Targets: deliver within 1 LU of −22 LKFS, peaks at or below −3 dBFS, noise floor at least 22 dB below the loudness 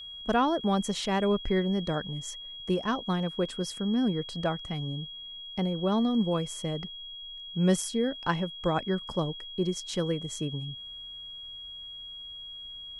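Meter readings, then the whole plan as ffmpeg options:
interfering tone 3,300 Hz; level of the tone −40 dBFS; integrated loudness −30.5 LKFS; sample peak −12.5 dBFS; target loudness −22.0 LKFS
→ -af "bandreject=frequency=3300:width=30"
-af "volume=8.5dB"

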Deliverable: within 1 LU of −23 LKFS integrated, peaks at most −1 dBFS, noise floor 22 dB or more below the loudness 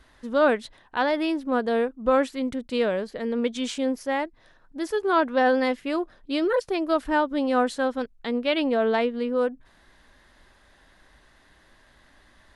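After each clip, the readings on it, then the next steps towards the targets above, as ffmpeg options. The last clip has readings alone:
integrated loudness −25.0 LKFS; sample peak −10.0 dBFS; target loudness −23.0 LKFS
→ -af "volume=2dB"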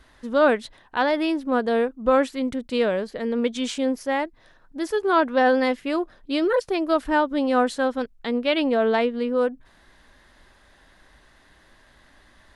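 integrated loudness −23.0 LKFS; sample peak −8.0 dBFS; background noise floor −56 dBFS

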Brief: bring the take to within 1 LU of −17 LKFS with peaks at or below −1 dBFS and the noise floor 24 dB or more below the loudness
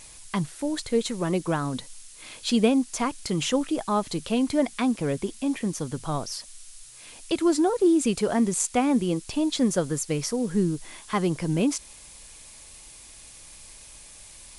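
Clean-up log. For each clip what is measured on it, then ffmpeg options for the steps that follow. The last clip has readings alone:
background noise floor −47 dBFS; target noise floor −50 dBFS; integrated loudness −26.0 LKFS; sample peak −8.0 dBFS; target loudness −17.0 LKFS
→ -af "afftdn=noise_reduction=6:noise_floor=-47"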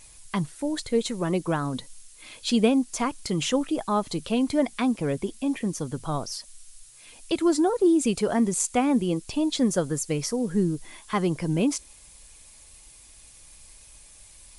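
background noise floor −51 dBFS; integrated loudness −26.0 LKFS; sample peak −8.0 dBFS; target loudness −17.0 LKFS
→ -af "volume=9dB,alimiter=limit=-1dB:level=0:latency=1"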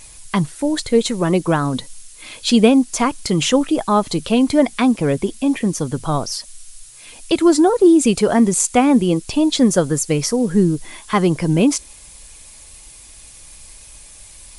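integrated loudness −17.0 LKFS; sample peak −1.0 dBFS; background noise floor −42 dBFS

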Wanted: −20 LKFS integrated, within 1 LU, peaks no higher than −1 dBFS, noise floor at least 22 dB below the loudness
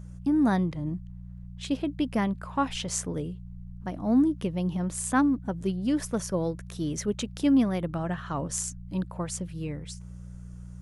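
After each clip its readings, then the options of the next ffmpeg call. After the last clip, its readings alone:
mains hum 60 Hz; hum harmonics up to 180 Hz; level of the hum −39 dBFS; integrated loudness −28.5 LKFS; sample peak −11.5 dBFS; target loudness −20.0 LKFS
→ -af "bandreject=frequency=60:width_type=h:width=4,bandreject=frequency=120:width_type=h:width=4,bandreject=frequency=180:width_type=h:width=4"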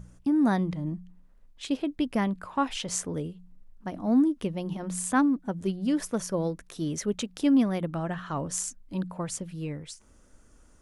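mains hum none found; integrated loudness −29.0 LKFS; sample peak −12.0 dBFS; target loudness −20.0 LKFS
→ -af "volume=9dB"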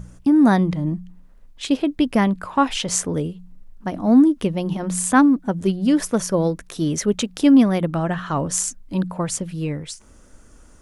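integrated loudness −20.0 LKFS; sample peak −3.0 dBFS; background noise floor −48 dBFS

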